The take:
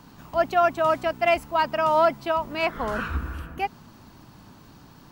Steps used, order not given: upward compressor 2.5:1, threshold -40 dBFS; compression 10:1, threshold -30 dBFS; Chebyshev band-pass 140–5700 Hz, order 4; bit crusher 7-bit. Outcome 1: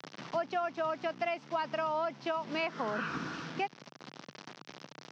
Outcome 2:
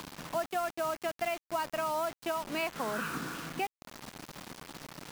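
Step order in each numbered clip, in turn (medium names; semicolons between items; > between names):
bit crusher > Chebyshev band-pass > upward compressor > compression; Chebyshev band-pass > compression > upward compressor > bit crusher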